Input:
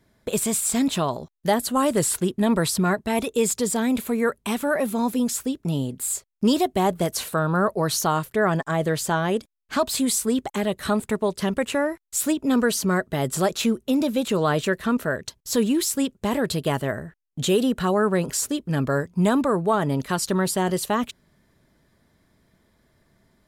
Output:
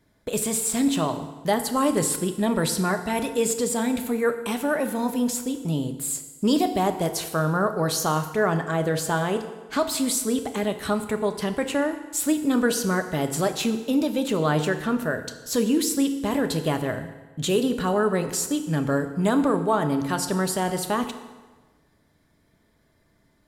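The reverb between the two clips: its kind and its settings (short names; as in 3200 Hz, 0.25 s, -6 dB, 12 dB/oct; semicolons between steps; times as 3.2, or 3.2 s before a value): FDN reverb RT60 1.3 s, low-frequency decay 0.9×, high-frequency decay 0.8×, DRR 7 dB; gain -2 dB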